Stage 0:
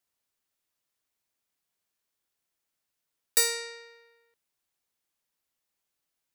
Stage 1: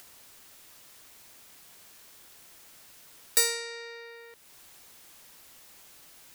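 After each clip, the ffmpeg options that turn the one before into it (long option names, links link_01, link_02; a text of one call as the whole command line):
ffmpeg -i in.wav -af "acompressor=mode=upward:threshold=-29dB:ratio=2.5" out.wav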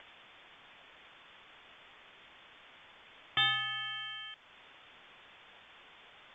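ffmpeg -i in.wav -af "aeval=exprs='clip(val(0),-1,0.0631)':channel_layout=same,lowpass=frequency=3100:width_type=q:width=0.5098,lowpass=frequency=3100:width_type=q:width=0.6013,lowpass=frequency=3100:width_type=q:width=0.9,lowpass=frequency=3100:width_type=q:width=2.563,afreqshift=-3600,volume=4dB" -ar 16000 -c:a pcm_mulaw out.wav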